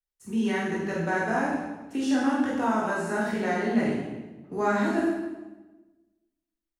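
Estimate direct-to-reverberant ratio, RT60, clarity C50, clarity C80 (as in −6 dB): −6.0 dB, 1.2 s, 1.0 dB, 3.5 dB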